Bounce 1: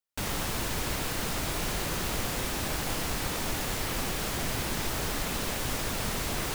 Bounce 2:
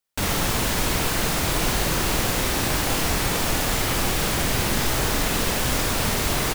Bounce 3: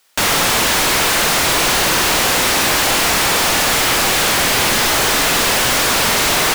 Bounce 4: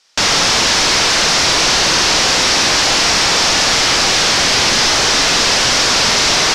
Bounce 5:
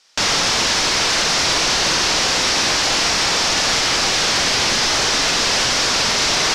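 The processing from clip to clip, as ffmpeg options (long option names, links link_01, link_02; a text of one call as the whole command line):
ffmpeg -i in.wav -filter_complex "[0:a]asplit=2[link_01][link_02];[link_02]adelay=47,volume=-5dB[link_03];[link_01][link_03]amix=inputs=2:normalize=0,volume=7.5dB" out.wav
ffmpeg -i in.wav -filter_complex "[0:a]asplit=2[link_01][link_02];[link_02]highpass=frequency=720:poles=1,volume=34dB,asoftclip=type=tanh:threshold=-7.5dB[link_03];[link_01][link_03]amix=inputs=2:normalize=0,lowpass=frequency=7300:poles=1,volume=-6dB" out.wav
ffmpeg -i in.wav -af "lowpass=frequency=5500:width_type=q:width=2.5" out.wav
ffmpeg -i in.wav -af "alimiter=limit=-10dB:level=0:latency=1" out.wav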